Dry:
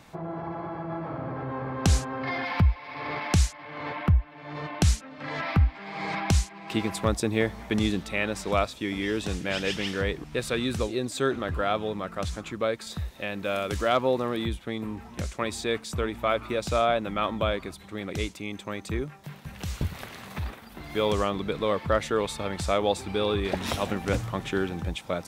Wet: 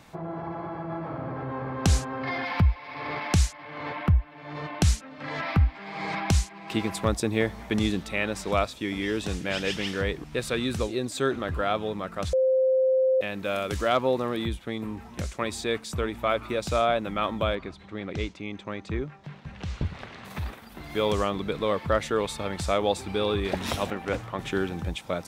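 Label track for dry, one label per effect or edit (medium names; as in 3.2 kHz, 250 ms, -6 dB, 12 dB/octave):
12.330000	13.210000	bleep 522 Hz -18.5 dBFS
17.550000	20.250000	distance through air 130 m
23.900000	24.390000	tone controls bass -8 dB, treble -10 dB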